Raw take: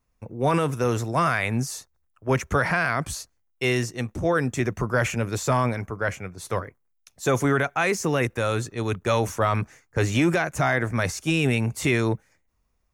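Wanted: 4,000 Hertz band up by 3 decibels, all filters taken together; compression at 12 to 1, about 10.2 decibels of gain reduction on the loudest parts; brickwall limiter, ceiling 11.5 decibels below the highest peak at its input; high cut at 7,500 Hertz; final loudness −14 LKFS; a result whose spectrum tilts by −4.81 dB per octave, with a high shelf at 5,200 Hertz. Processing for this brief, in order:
low-pass filter 7,500 Hz
parametric band 4,000 Hz +7.5 dB
high-shelf EQ 5,200 Hz −8 dB
downward compressor 12 to 1, threshold −27 dBFS
level +23 dB
brickwall limiter −3 dBFS

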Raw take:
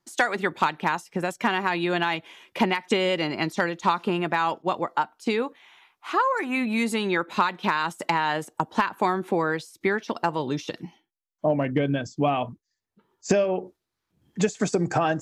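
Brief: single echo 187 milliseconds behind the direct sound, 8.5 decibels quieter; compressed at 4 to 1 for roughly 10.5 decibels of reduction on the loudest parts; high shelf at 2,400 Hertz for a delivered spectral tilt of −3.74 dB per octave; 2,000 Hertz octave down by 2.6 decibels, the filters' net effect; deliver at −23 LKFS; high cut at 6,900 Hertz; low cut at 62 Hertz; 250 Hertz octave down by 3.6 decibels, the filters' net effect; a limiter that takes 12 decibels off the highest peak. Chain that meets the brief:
high-pass filter 62 Hz
low-pass filter 6,900 Hz
parametric band 250 Hz −5 dB
parametric band 2,000 Hz −7.5 dB
high-shelf EQ 2,400 Hz +8.5 dB
downward compressor 4 to 1, threshold −31 dBFS
brickwall limiter −24.5 dBFS
single-tap delay 187 ms −8.5 dB
level +13.5 dB

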